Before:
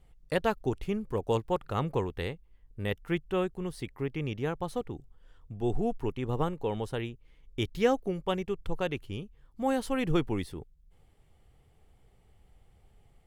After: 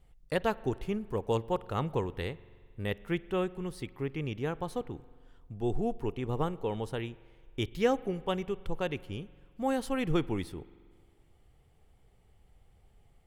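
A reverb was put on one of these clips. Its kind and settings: spring tank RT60 1.9 s, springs 44 ms, chirp 25 ms, DRR 19.5 dB; trim -1.5 dB

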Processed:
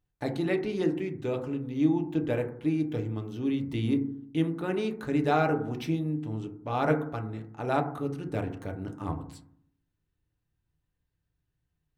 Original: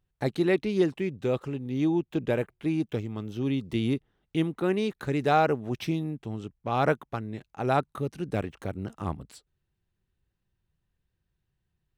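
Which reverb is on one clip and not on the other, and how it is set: FDN reverb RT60 0.63 s, low-frequency decay 1.35×, high-frequency decay 0.25×, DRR 3.5 dB; trim -4 dB

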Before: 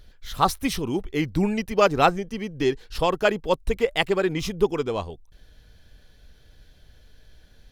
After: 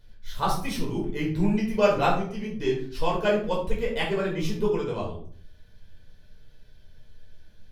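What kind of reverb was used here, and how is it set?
simulated room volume 520 m³, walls furnished, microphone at 4.9 m; trim -11.5 dB

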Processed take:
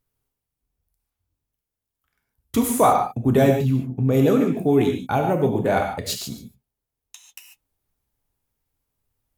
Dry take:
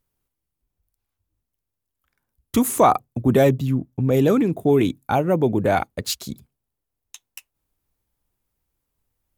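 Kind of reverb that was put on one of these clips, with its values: gated-style reverb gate 170 ms flat, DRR 2.5 dB; trim -2.5 dB

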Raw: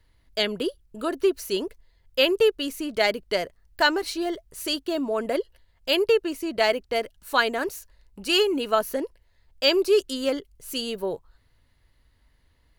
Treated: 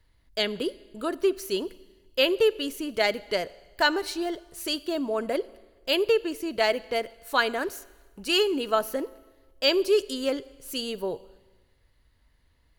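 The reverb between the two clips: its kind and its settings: Schroeder reverb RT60 1.3 s, combs from 32 ms, DRR 19 dB; trim -2 dB

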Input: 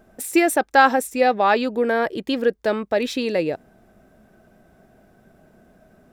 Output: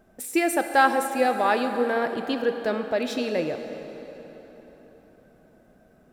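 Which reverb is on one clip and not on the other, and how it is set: plate-style reverb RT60 4.3 s, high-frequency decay 0.7×, DRR 6.5 dB; trim -5 dB

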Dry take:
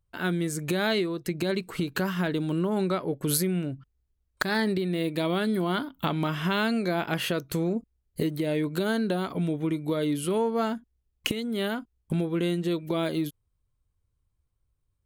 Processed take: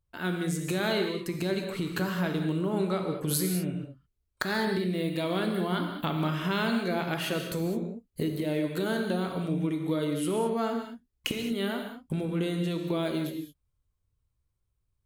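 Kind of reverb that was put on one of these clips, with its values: gated-style reverb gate 240 ms flat, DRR 3.5 dB; trim -3.5 dB

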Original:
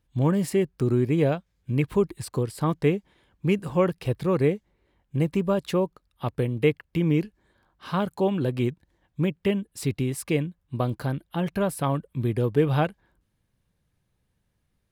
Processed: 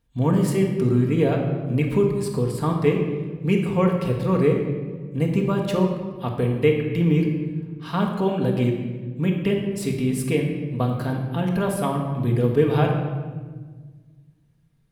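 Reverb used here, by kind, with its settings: simulated room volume 1400 m³, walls mixed, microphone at 1.7 m

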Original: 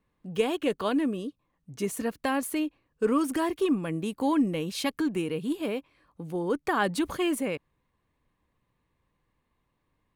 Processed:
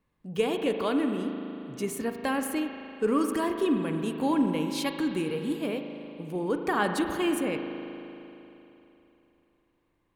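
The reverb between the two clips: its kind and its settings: spring tank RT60 3.2 s, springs 38 ms, chirp 20 ms, DRR 5 dB; trim -1 dB

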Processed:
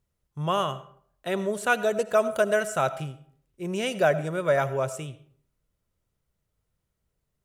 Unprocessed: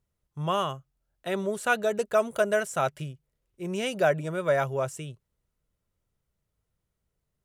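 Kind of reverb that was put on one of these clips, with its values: algorithmic reverb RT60 0.57 s, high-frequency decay 0.65×, pre-delay 40 ms, DRR 14.5 dB; trim +1.5 dB

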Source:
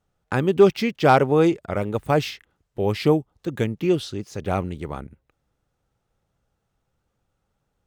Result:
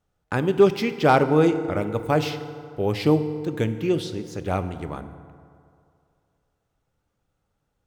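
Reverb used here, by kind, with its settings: FDN reverb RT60 2.4 s, low-frequency decay 0.85×, high-frequency decay 0.5×, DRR 9.5 dB; trim -1.5 dB

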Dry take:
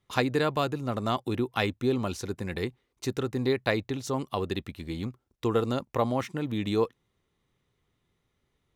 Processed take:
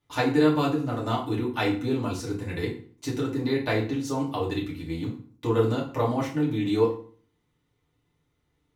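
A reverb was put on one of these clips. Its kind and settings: FDN reverb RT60 0.45 s, low-frequency decay 1.25×, high-frequency decay 0.8×, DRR -5.5 dB; trim -5.5 dB

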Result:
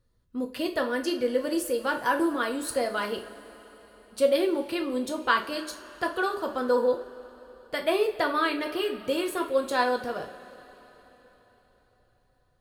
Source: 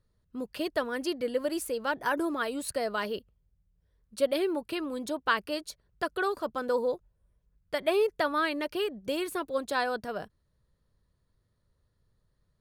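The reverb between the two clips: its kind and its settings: two-slope reverb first 0.34 s, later 4.3 s, from -20 dB, DRR 2.5 dB; trim +1 dB

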